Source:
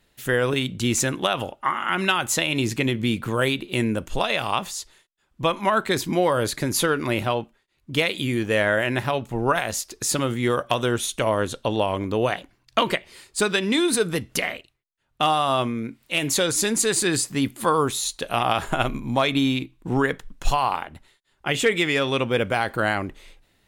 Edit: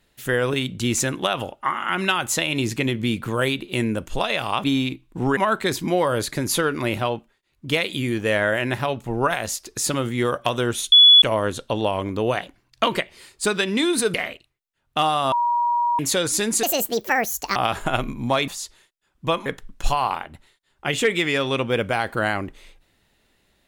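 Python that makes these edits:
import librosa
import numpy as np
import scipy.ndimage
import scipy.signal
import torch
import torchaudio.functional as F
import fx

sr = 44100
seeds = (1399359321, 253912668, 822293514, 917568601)

y = fx.edit(x, sr, fx.swap(start_s=4.64, length_s=0.98, other_s=19.34, other_length_s=0.73),
    fx.insert_tone(at_s=11.17, length_s=0.3, hz=3410.0, db=-7.0),
    fx.cut(start_s=14.09, length_s=0.29),
    fx.bleep(start_s=15.56, length_s=0.67, hz=955.0, db=-17.5),
    fx.speed_span(start_s=16.87, length_s=1.55, speed=1.67), tone=tone)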